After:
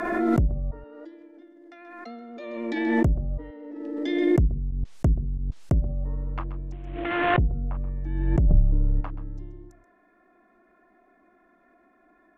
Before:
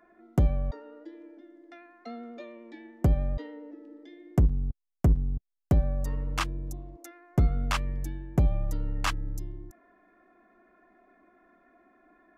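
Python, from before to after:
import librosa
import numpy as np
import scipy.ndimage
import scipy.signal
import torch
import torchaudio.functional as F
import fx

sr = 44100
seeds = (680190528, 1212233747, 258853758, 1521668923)

y = fx.cvsd(x, sr, bps=16000, at=(6.72, 7.47))
y = fx.env_lowpass_down(y, sr, base_hz=440.0, full_db=-23.0)
y = y + 10.0 ** (-15.0 / 20.0) * np.pad(y, (int(130 * sr / 1000.0), 0))[:len(y)]
y = fx.env_lowpass_down(y, sr, base_hz=390.0, full_db=-17.5)
y = fx.low_shelf(y, sr, hz=290.0, db=11.0, at=(8.53, 9.01))
y = fx.pre_swell(y, sr, db_per_s=31.0)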